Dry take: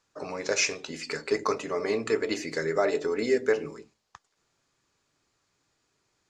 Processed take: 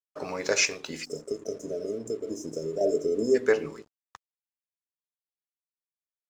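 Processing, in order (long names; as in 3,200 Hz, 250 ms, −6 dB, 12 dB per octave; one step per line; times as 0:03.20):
0:01.05–0:03.35: time-frequency box erased 700–5,000 Hz
0:00.65–0:02.81: downward compressor 5 to 1, threshold −31 dBFS, peak gain reduction 10 dB
dead-zone distortion −56.5 dBFS
level +2 dB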